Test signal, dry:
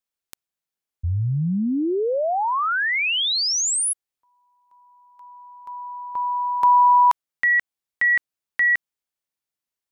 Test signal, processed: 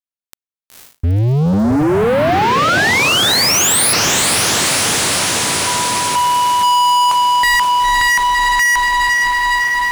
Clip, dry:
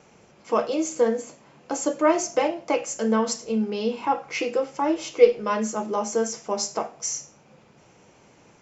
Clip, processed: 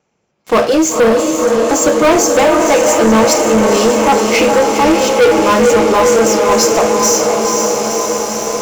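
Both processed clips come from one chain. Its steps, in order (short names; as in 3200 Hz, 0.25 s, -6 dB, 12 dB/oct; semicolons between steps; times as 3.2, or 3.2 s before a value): diffused feedback echo 0.499 s, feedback 75%, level -5.5 dB; sample leveller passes 5; gain -2 dB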